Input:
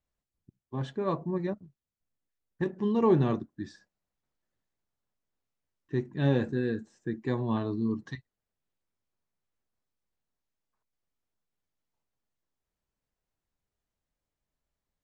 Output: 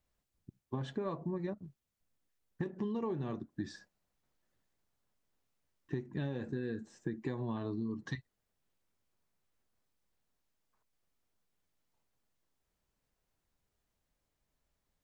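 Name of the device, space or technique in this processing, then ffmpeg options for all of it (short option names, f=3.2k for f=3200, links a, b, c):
serial compression, leveller first: -af "acompressor=threshold=-34dB:ratio=1.5,acompressor=threshold=-38dB:ratio=10,volume=4.5dB"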